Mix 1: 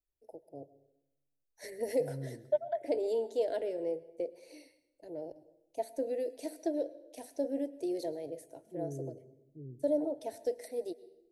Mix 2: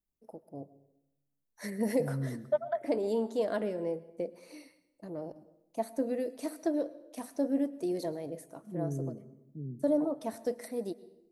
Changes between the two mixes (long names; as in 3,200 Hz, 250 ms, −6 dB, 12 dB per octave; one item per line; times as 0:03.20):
first voice: add high-shelf EQ 8,700 Hz +5.5 dB
master: remove phaser with its sweep stopped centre 490 Hz, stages 4